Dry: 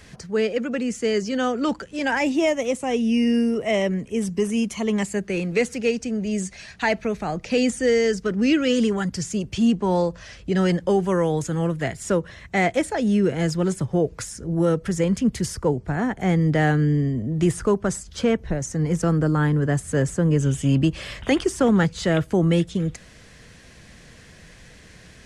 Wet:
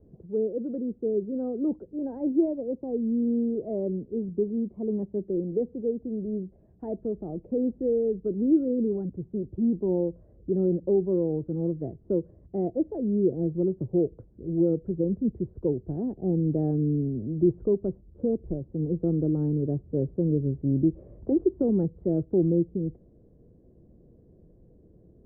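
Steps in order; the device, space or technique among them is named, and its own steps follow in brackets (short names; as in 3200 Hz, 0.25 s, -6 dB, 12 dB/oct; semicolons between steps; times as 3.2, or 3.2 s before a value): under water (LPF 550 Hz 24 dB/oct; bell 350 Hz +8.5 dB 0.56 oct); gain -7.5 dB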